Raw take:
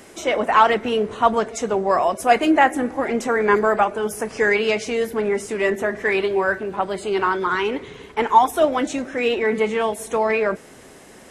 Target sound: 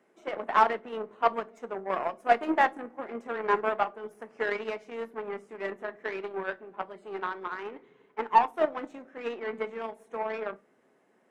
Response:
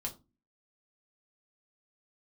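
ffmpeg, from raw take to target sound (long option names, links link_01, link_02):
-filter_complex "[0:a]aeval=exprs='0.841*(cos(1*acos(clip(val(0)/0.841,-1,1)))-cos(1*PI/2))+0.0299*(cos(3*acos(clip(val(0)/0.841,-1,1)))-cos(3*PI/2))+0.075*(cos(4*acos(clip(val(0)/0.841,-1,1)))-cos(4*PI/2))+0.0841*(cos(7*acos(clip(val(0)/0.841,-1,1)))-cos(7*PI/2))':channel_layout=same,acrossover=split=170 2300:gain=0.0794 1 0.178[link_01][link_02][link_03];[link_01][link_02][link_03]amix=inputs=3:normalize=0,asplit=2[link_04][link_05];[1:a]atrim=start_sample=2205[link_06];[link_05][link_06]afir=irnorm=-1:irlink=0,volume=-9.5dB[link_07];[link_04][link_07]amix=inputs=2:normalize=0,volume=-8dB"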